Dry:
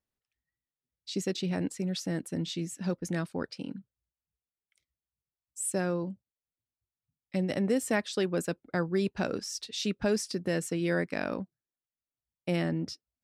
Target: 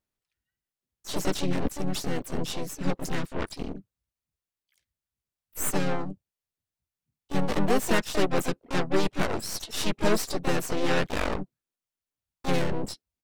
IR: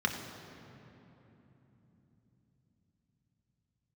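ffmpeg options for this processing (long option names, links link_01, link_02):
-filter_complex "[0:a]aeval=exprs='0.188*(cos(1*acos(clip(val(0)/0.188,-1,1)))-cos(1*PI/2))+0.0376*(cos(8*acos(clip(val(0)/0.188,-1,1)))-cos(8*PI/2))':channel_layout=same,asplit=4[link_01][link_02][link_03][link_04];[link_02]asetrate=35002,aresample=44100,atempo=1.25992,volume=-5dB[link_05];[link_03]asetrate=66075,aresample=44100,atempo=0.66742,volume=-5dB[link_06];[link_04]asetrate=88200,aresample=44100,atempo=0.5,volume=-15dB[link_07];[link_01][link_05][link_06][link_07]amix=inputs=4:normalize=0"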